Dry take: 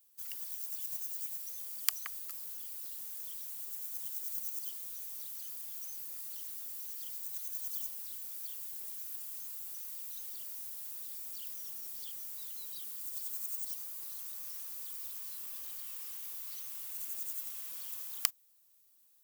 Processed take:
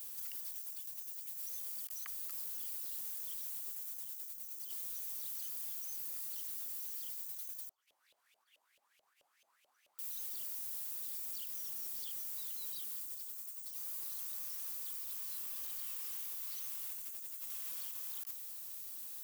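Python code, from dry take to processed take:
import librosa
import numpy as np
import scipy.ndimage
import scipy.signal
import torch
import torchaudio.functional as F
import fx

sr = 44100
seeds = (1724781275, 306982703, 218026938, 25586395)

y = fx.over_compress(x, sr, threshold_db=-53.0, ratio=-1.0)
y = fx.filter_lfo_bandpass(y, sr, shape='saw_up', hz=4.6, low_hz=560.0, high_hz=3000.0, q=6.3, at=(7.69, 9.99))
y = y * 10.0 ** (9.5 / 20.0)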